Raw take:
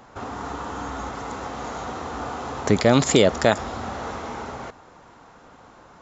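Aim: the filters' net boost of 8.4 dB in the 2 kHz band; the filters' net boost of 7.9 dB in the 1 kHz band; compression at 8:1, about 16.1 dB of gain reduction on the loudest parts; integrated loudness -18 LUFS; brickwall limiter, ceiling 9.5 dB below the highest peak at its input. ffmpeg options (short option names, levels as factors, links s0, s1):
-af "equalizer=f=1000:t=o:g=8.5,equalizer=f=2000:t=o:g=7.5,acompressor=threshold=0.0562:ratio=8,volume=4.22,alimiter=limit=0.422:level=0:latency=1"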